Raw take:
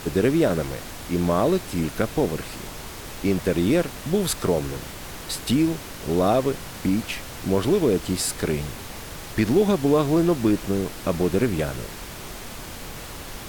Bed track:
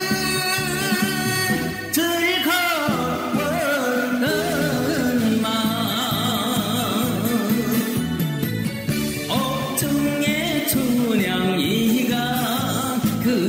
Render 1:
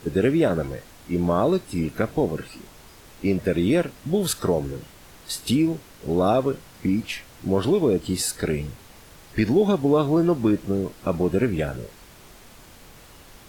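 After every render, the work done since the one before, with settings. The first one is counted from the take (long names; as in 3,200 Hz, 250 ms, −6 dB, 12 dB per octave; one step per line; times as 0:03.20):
noise reduction from a noise print 11 dB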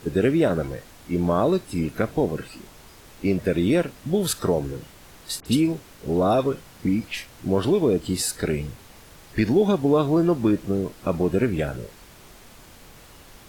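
0:05.40–0:07.45: all-pass dispersion highs, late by 57 ms, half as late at 2,400 Hz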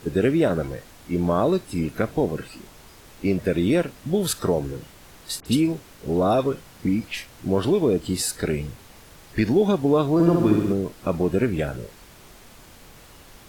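0:10.13–0:10.73: flutter between parallel walls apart 11.2 metres, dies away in 1.1 s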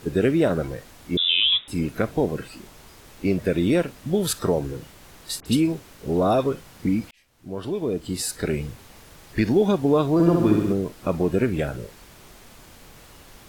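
0:01.17–0:01.68: voice inversion scrambler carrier 3,700 Hz
0:07.11–0:08.57: fade in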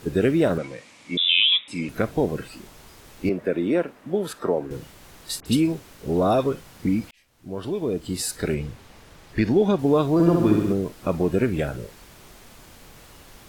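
0:00.58–0:01.89: loudspeaker in its box 210–8,800 Hz, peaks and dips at 390 Hz −9 dB, 720 Hz −6 dB, 1,500 Hz −6 dB, 2,300 Hz +9 dB
0:03.29–0:04.71: three-way crossover with the lows and the highs turned down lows −17 dB, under 210 Hz, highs −13 dB, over 2,300 Hz
0:08.54–0:09.79: high-shelf EQ 7,300 Hz −10 dB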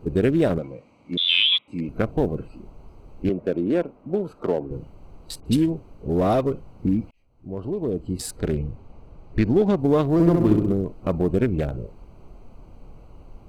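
adaptive Wiener filter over 25 samples
low-shelf EQ 67 Hz +11 dB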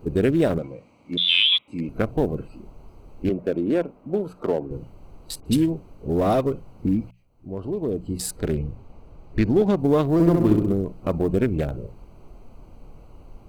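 high-shelf EQ 9,600 Hz +7.5 dB
mains-hum notches 60/120/180 Hz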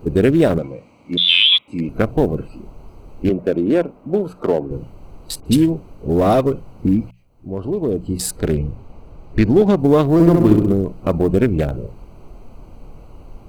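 level +6 dB
brickwall limiter −1 dBFS, peak gain reduction 2 dB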